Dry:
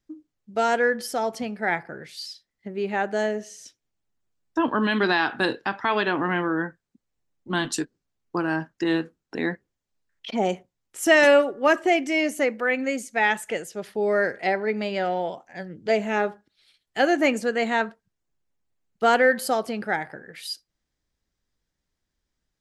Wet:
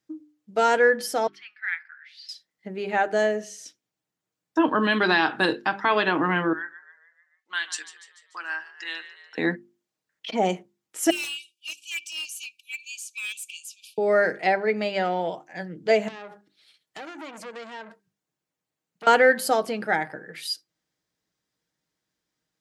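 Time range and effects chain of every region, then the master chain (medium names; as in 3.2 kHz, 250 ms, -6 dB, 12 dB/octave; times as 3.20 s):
1.27–2.29 s: steep high-pass 1.5 kHz + distance through air 300 m
6.53–9.38 s: Chebyshev band-pass 1.7–8.3 kHz + treble shelf 5.8 kHz -7 dB + frequency-shifting echo 146 ms, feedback 54%, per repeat +49 Hz, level -14 dB
11.10–13.98 s: brick-wall FIR high-pass 2.3 kHz + hard clipper -31 dBFS
16.08–19.07 s: compression 12:1, threshold -32 dBFS + high-pass 41 Hz 6 dB/octave + transformer saturation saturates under 2.7 kHz
whole clip: high-pass 140 Hz; hum notches 50/100/150/200/250/300/350/400 Hz; comb 6.4 ms, depth 32%; trim +1.5 dB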